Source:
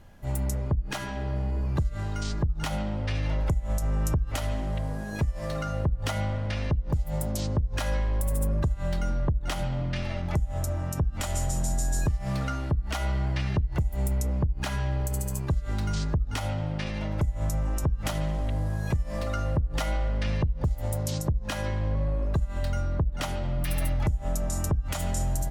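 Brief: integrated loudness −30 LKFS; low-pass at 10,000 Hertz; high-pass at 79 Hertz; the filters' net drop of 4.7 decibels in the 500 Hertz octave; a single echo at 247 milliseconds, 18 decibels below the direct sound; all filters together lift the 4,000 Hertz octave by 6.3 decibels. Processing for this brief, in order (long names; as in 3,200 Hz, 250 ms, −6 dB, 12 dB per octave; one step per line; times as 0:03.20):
high-pass filter 79 Hz
low-pass filter 10,000 Hz
parametric band 500 Hz −6 dB
parametric band 4,000 Hz +8.5 dB
single-tap delay 247 ms −18 dB
level +1.5 dB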